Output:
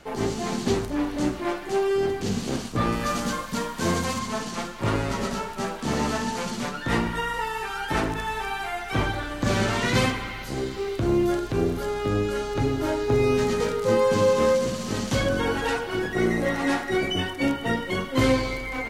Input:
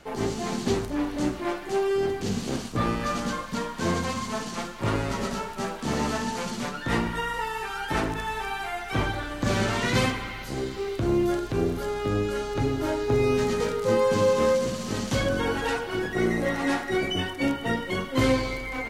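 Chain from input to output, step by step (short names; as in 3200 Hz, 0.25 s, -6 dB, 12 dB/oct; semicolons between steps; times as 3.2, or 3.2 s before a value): 2.92–4.19 high shelf 8500 Hz +9.5 dB; gain +1.5 dB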